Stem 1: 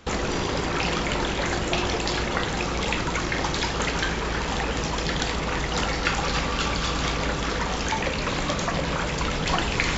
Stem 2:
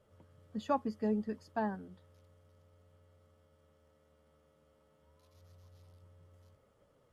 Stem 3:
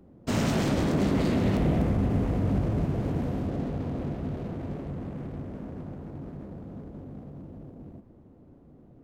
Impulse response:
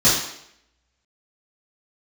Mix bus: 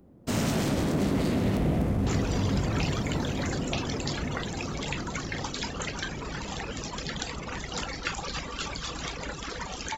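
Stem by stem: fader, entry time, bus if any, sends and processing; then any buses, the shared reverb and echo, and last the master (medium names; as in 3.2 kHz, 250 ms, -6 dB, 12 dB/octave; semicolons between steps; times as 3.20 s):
-7.5 dB, 2.00 s, no send, reverb removal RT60 1.3 s
mute
-1.5 dB, 0.00 s, no send, none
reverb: none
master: treble shelf 5.7 kHz +8 dB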